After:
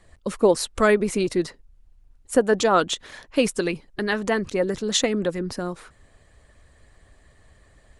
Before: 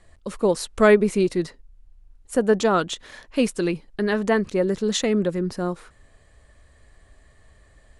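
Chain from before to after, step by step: harmonic-percussive split harmonic -8 dB; trim +4 dB

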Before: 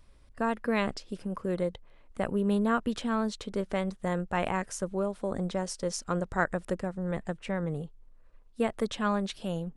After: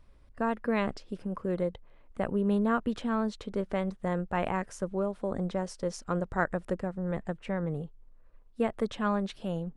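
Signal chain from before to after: treble shelf 3.4 kHz -10 dB

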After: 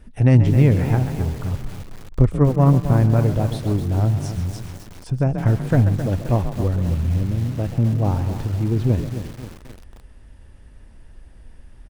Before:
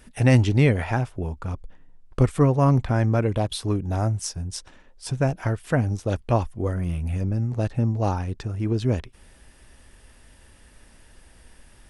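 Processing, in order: single-diode clipper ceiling -9 dBFS; 7.23–7.78 s: bass shelf 160 Hz -5.5 dB; on a send: frequency-shifting echo 135 ms, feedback 34%, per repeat +34 Hz, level -11.5 dB; 2.39–3.22 s: on the sum: transient shaper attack +6 dB, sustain -8 dB; 5.34–5.89 s: waveshaping leveller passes 1; tilt EQ -2.5 dB/octave; bit-crushed delay 265 ms, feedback 55%, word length 5-bit, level -10 dB; trim -2.5 dB

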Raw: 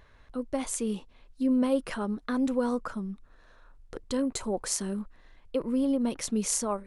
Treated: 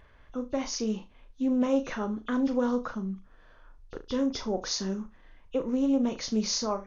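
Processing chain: knee-point frequency compression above 2.5 kHz 1.5:1; flutter echo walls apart 6.3 m, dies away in 0.23 s; loudspeaker Doppler distortion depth 0.1 ms

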